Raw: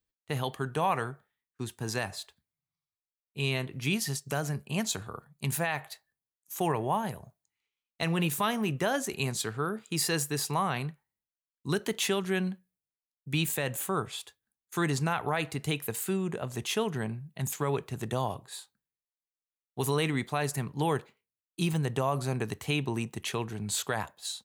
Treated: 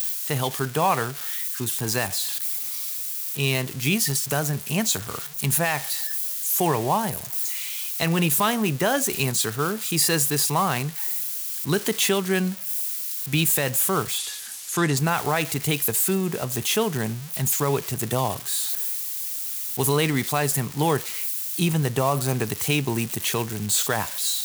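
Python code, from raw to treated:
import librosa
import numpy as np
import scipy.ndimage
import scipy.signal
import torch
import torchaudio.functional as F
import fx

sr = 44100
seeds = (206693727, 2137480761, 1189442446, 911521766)

y = x + 0.5 * 10.0 ** (-27.5 / 20.0) * np.diff(np.sign(x), prepend=np.sign(x[:1]))
y = fx.lowpass(y, sr, hz=9400.0, slope=12, at=(14.18, 14.97))
y = y * librosa.db_to_amplitude(6.5)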